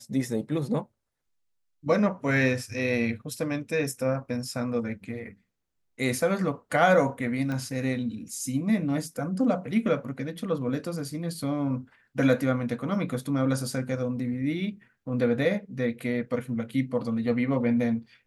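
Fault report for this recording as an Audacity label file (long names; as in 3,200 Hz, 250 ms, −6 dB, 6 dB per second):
7.520000	7.520000	click −21 dBFS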